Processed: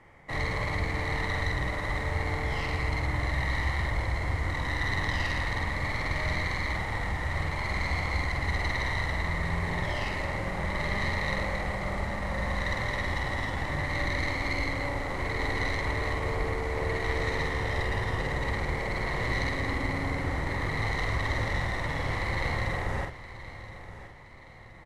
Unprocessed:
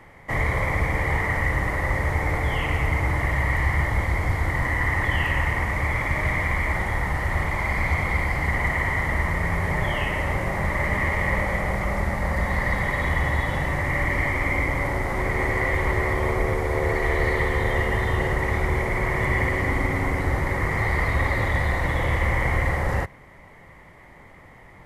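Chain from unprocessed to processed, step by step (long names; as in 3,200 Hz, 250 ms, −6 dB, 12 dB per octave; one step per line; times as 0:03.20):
stylus tracing distortion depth 0.12 ms
low-pass filter 8,900 Hz 12 dB per octave
double-tracking delay 47 ms −4 dB
repeating echo 1,022 ms, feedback 41%, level −14.5 dB
level −8 dB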